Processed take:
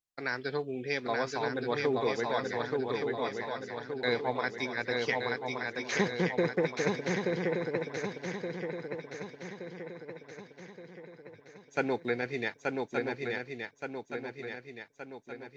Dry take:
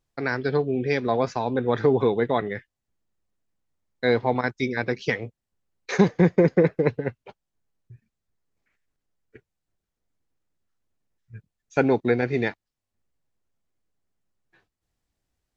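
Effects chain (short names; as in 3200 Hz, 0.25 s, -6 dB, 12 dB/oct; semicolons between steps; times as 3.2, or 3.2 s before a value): tilt +2.5 dB/oct; gate -43 dBFS, range -8 dB; on a send: swung echo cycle 1.172 s, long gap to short 3:1, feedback 51%, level -3 dB; on the sum: gain -7.5 dB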